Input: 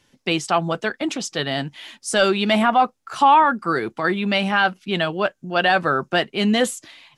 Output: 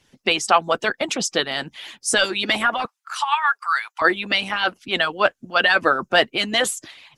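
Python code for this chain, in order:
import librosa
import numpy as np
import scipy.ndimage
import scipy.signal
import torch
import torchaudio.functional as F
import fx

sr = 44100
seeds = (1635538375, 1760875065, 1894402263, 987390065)

y = fx.steep_highpass(x, sr, hz=890.0, slope=36, at=(2.85, 4.02))
y = fx.hpss(y, sr, part='harmonic', gain_db=-18)
y = y * 10.0 ** (5.5 / 20.0)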